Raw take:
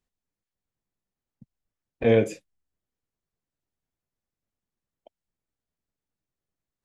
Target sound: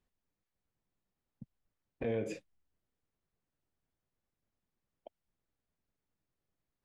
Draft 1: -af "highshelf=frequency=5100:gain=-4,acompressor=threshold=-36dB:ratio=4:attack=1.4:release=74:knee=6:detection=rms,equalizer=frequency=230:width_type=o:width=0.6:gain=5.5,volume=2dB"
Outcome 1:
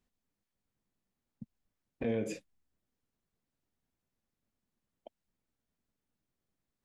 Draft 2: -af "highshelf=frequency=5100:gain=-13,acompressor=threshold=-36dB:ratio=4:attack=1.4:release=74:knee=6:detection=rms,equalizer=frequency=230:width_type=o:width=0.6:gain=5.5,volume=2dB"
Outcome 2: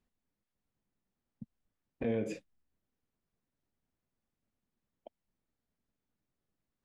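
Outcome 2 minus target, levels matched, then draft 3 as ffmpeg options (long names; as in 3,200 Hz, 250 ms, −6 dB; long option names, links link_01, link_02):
250 Hz band +2.5 dB
-af "highshelf=frequency=5100:gain=-13,acompressor=threshold=-36dB:ratio=4:attack=1.4:release=74:knee=6:detection=rms,volume=2dB"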